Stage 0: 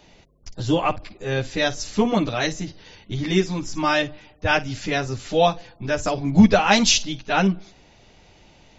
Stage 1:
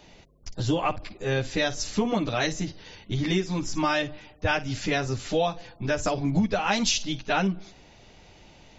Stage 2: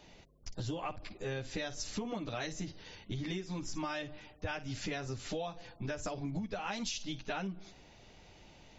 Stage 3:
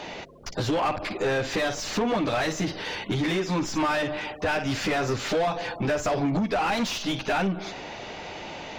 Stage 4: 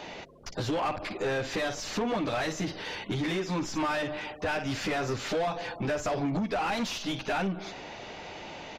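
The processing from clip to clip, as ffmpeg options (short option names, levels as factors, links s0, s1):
-af "acompressor=threshold=0.0891:ratio=6"
-af "acompressor=threshold=0.0316:ratio=5,volume=0.531"
-filter_complex "[0:a]asplit=2[s0][s1];[s1]highpass=f=720:p=1,volume=20,asoftclip=type=tanh:threshold=0.0631[s2];[s0][s2]amix=inputs=2:normalize=0,lowpass=f=1500:p=1,volume=0.501,volume=2.51"
-af "aresample=32000,aresample=44100,volume=0.596"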